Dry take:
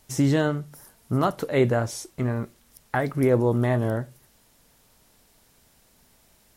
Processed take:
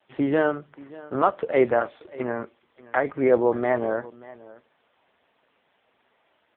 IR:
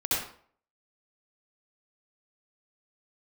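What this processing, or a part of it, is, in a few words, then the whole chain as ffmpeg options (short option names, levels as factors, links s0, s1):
satellite phone: -af "highpass=390,lowpass=3400,aecho=1:1:582:0.1,volume=1.78" -ar 8000 -c:a libopencore_amrnb -b:a 5150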